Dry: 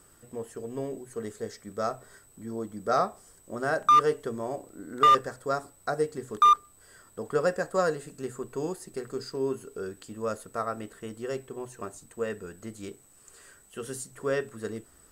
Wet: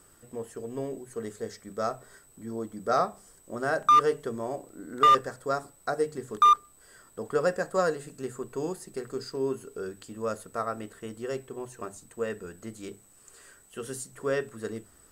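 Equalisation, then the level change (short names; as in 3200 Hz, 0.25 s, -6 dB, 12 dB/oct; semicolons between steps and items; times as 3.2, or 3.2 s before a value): notches 50/100/150/200 Hz; 0.0 dB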